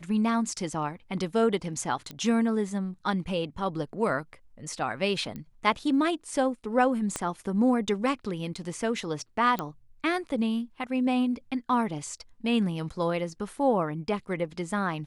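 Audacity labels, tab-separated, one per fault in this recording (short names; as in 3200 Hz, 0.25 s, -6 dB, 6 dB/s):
2.110000	2.110000	pop -22 dBFS
5.360000	5.360000	pop -25 dBFS
7.160000	7.160000	pop -15 dBFS
9.590000	9.590000	pop -16 dBFS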